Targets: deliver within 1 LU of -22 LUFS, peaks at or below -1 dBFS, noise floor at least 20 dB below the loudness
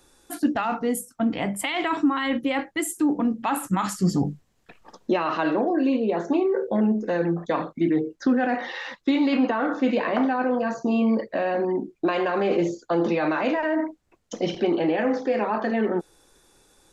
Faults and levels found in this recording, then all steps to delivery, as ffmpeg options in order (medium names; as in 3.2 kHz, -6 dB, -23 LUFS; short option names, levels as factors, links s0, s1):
loudness -24.5 LUFS; peak level -11.0 dBFS; loudness target -22.0 LUFS
-> -af "volume=1.33"